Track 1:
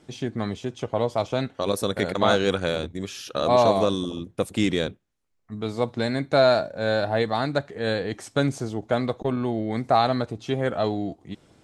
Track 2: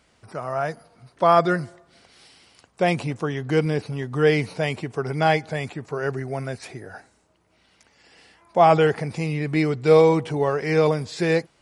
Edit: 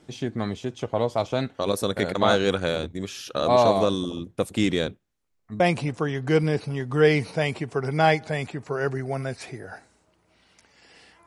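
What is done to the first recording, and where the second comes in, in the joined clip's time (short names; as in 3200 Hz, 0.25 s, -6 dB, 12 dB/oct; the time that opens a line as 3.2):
track 1
5.6 switch to track 2 from 2.82 s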